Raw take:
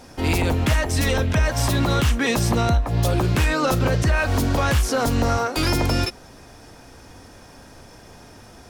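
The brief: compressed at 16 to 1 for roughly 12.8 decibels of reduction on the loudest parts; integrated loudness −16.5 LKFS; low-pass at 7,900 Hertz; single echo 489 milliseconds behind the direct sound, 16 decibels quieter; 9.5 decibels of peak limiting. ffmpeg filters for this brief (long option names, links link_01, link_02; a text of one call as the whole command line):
ffmpeg -i in.wav -af "lowpass=7900,acompressor=threshold=-28dB:ratio=16,alimiter=level_in=4.5dB:limit=-24dB:level=0:latency=1,volume=-4.5dB,aecho=1:1:489:0.158,volume=20.5dB" out.wav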